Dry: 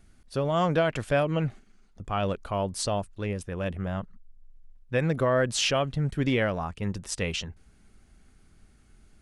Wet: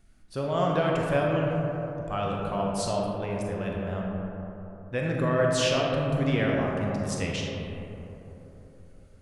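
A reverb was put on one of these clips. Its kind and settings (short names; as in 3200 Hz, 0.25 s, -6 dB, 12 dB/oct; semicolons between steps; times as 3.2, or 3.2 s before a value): digital reverb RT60 3.6 s, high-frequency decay 0.3×, pre-delay 0 ms, DRR -2 dB; gain -4 dB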